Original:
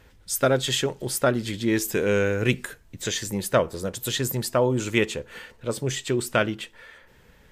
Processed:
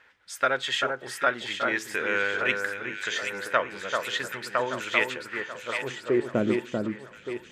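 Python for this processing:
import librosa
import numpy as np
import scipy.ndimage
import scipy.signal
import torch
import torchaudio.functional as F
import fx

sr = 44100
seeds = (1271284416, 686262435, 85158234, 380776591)

y = fx.filter_sweep_bandpass(x, sr, from_hz=1700.0, to_hz=240.0, start_s=5.73, end_s=6.41, q=1.4)
y = fx.echo_alternate(y, sr, ms=390, hz=1700.0, feedback_pct=70, wet_db=-4.0)
y = F.gain(torch.from_numpy(y), 4.5).numpy()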